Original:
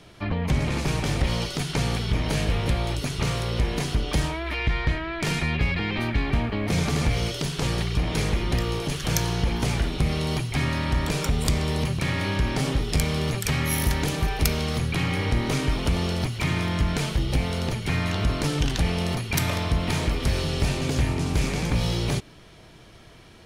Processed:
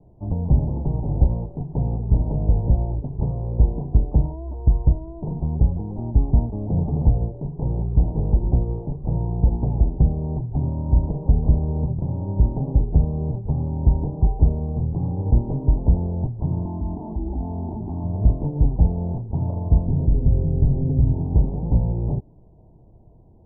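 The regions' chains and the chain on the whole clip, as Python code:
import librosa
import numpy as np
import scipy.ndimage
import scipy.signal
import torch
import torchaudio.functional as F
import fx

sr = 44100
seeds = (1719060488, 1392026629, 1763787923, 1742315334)

y = fx.chain(x, sr, fx.highpass(hz=80.0, slope=12),
    fx.fixed_phaser(hz=500.0, stages=6),
    fx.env_flatten(amount_pct=100), at=(16.65, 18.04))
y = fx.chain(y, sr, fx.peak_eq(hz=1300.0, db=-15.0, octaves=2.3),
    fx.comb(ms=7.4, depth=0.33),
    fx.env_flatten(amount_pct=50), at=(19.86, 21.14))
y = scipy.signal.sosfilt(scipy.signal.butter(12, 930.0, 'lowpass', fs=sr, output='sos'), y)
y = fx.low_shelf(y, sr, hz=180.0, db=10.5)
y = fx.upward_expand(y, sr, threshold_db=-23.0, expansion=1.5)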